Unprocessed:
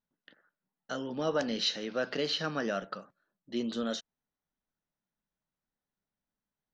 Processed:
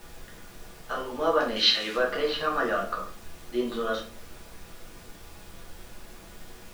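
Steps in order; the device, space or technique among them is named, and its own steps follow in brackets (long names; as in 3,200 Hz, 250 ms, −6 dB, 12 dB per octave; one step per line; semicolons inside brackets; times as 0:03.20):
horn gramophone (band-pass filter 290–3,400 Hz; parametric band 1,100 Hz +11.5 dB 0.5 octaves; tape wow and flutter; pink noise bed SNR 15 dB)
0:01.56–0:01.97: meter weighting curve D
rectangular room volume 31 cubic metres, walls mixed, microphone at 0.71 metres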